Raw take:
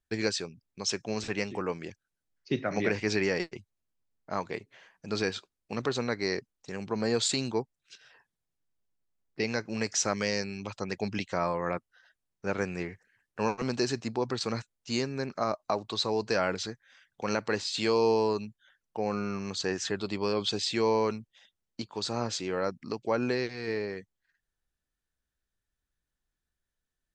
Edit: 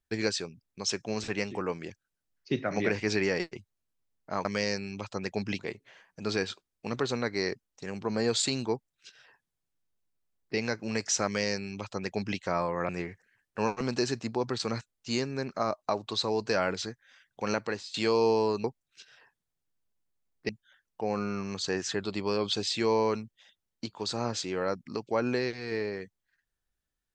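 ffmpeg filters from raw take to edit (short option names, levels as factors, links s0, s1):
-filter_complex "[0:a]asplit=7[s0][s1][s2][s3][s4][s5][s6];[s0]atrim=end=4.452[s7];[s1]atrim=start=10.108:end=11.252[s8];[s2]atrim=start=4.448:end=11.752[s9];[s3]atrim=start=12.698:end=17.75,asetpts=PTS-STARTPTS,afade=t=out:st=4.682:d=0.37:silence=0.158489[s10];[s4]atrim=start=17.75:end=18.452,asetpts=PTS-STARTPTS,afade=t=in:d=0.004:c=hsin:silence=0.158489[s11];[s5]atrim=start=7.568:end=9.422[s12];[s6]atrim=start=18.448[s13];[s7][s8]acrossfade=d=0.004:c1=hsin:c2=hsin[s14];[s14][s9]acrossfade=d=0.004:c1=hsin:c2=hsin[s15];[s10][s11]concat=n=2:v=0:a=1[s16];[s15][s16]acrossfade=d=0.004:c1=hsin:c2=hsin[s17];[s17][s12]acrossfade=d=0.004:c1=hsin:c2=hsin[s18];[s18][s13]acrossfade=d=0.004:c1=hsin:c2=hsin"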